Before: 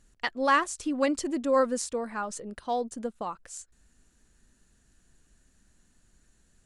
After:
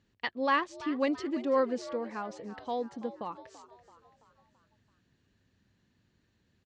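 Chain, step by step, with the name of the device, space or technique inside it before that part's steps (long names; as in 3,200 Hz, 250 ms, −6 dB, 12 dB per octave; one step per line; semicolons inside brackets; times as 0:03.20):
frequency-shifting delay pedal into a guitar cabinet (echo with shifted repeats 334 ms, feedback 51%, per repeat +78 Hz, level −15.5 dB; loudspeaker in its box 98–4,500 Hz, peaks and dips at 100 Hz +7 dB, 690 Hz −4 dB, 1,400 Hz −6 dB)
level −2.5 dB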